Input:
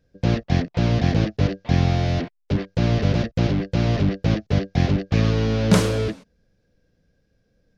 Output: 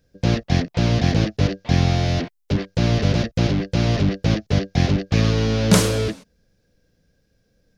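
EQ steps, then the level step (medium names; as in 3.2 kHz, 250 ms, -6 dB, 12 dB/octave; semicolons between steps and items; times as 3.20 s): treble shelf 4.6 kHz +9.5 dB; +1.0 dB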